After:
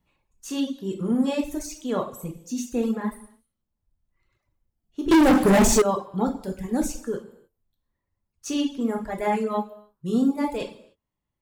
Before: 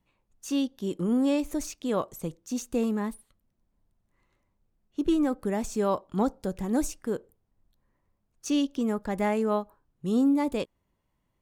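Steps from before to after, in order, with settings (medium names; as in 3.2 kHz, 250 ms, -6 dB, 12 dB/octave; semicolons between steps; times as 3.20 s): gated-style reverb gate 330 ms falling, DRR -1 dB; reverb removal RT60 1.8 s; 5.11–5.82 s: waveshaping leveller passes 5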